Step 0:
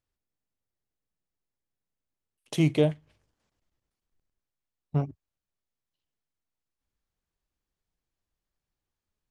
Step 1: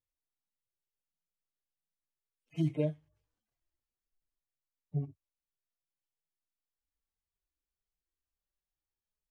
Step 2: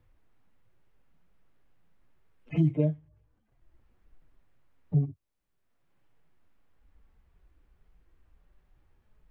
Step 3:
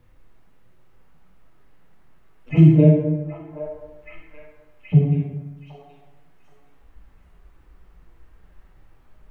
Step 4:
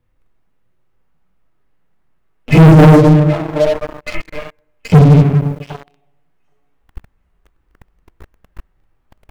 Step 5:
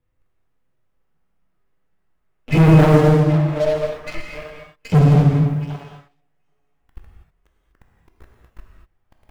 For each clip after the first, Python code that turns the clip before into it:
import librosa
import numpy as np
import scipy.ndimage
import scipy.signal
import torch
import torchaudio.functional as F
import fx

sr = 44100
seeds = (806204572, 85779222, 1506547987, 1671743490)

y1 = fx.hpss_only(x, sr, part='harmonic')
y1 = F.gain(torch.from_numpy(y1), -7.0).numpy()
y2 = fx.low_shelf(y1, sr, hz=310.0, db=10.5)
y2 = fx.band_squash(y2, sr, depth_pct=70)
y2 = F.gain(torch.from_numpy(y2), 2.5).numpy()
y3 = fx.echo_stepped(y2, sr, ms=775, hz=1000.0, octaves=0.7, feedback_pct=70, wet_db=-1.5)
y3 = fx.rev_plate(y3, sr, seeds[0], rt60_s=1.3, hf_ratio=0.55, predelay_ms=0, drr_db=-1.5)
y3 = F.gain(torch.from_numpy(y3), 8.5).numpy()
y4 = fx.leveller(y3, sr, passes=5)
y4 = F.gain(torch.from_numpy(y4), 1.0).numpy()
y5 = fx.rev_gated(y4, sr, seeds[1], gate_ms=270, shape='flat', drr_db=1.0)
y5 = F.gain(torch.from_numpy(y5), -8.0).numpy()